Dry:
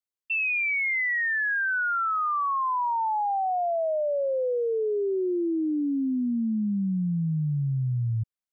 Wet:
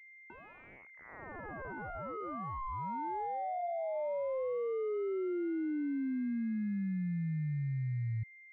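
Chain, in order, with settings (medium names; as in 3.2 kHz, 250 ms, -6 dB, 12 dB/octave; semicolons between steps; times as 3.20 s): 3.25–3.96 s: peaking EQ 82 Hz -10 dB 2.5 oct; class-D stage that switches slowly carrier 2.1 kHz; trim -8.5 dB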